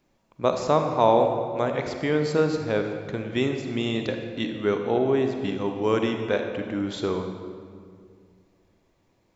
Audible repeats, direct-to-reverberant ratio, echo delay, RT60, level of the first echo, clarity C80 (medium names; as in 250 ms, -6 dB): no echo, 5.0 dB, no echo, 2.1 s, no echo, 6.5 dB